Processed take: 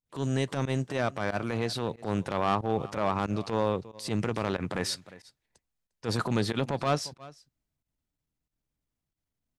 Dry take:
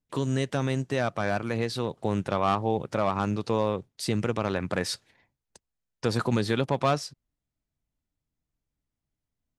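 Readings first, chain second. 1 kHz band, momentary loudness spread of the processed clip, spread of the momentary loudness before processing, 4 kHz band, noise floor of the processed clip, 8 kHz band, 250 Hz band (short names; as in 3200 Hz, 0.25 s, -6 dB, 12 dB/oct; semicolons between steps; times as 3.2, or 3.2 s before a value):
-2.0 dB, 5 LU, 5 LU, -1.0 dB, under -85 dBFS, -1.0 dB, -2.0 dB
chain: echo 0.352 s -21.5 dB; transient shaper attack -11 dB, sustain +1 dB; pump 92 bpm, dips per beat 1, -22 dB, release 73 ms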